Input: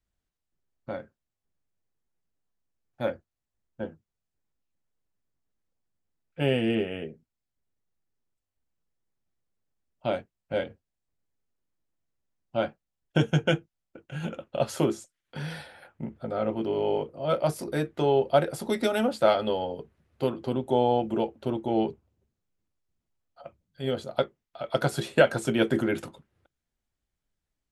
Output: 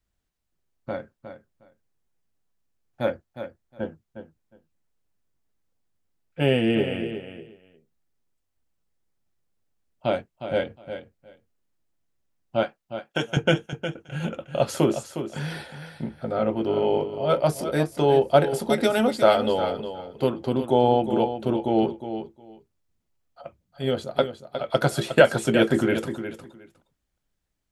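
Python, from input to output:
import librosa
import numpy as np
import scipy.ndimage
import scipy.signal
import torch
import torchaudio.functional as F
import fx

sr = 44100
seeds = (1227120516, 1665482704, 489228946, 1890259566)

y = fx.highpass(x, sr, hz=700.0, slope=6, at=(12.63, 13.37))
y = fx.echo_feedback(y, sr, ms=360, feedback_pct=16, wet_db=-10)
y = y * librosa.db_to_amplitude(4.0)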